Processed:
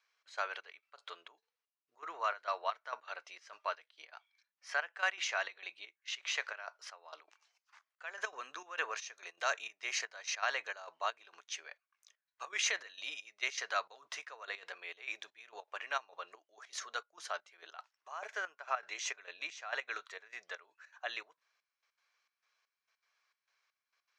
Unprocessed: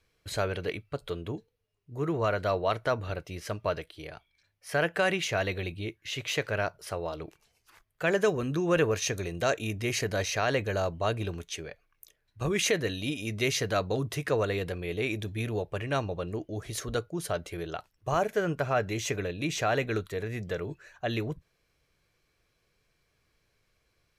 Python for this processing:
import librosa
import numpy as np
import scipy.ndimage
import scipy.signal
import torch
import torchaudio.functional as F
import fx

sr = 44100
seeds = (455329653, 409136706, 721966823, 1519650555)

y = scipy.signal.sosfilt(scipy.signal.butter(4, 1000.0, 'highpass', fs=sr, output='sos'), x)
y = fx.tilt_eq(y, sr, slope=-4.5)
y = fx.step_gate(y, sr, bpm=200, pattern='xxx..xxx...x.x', floor_db=-12.0, edge_ms=4.5)
y = fx.lowpass_res(y, sr, hz=6200.0, q=2.3)
y = y * librosa.db_to_amplitude(1.0)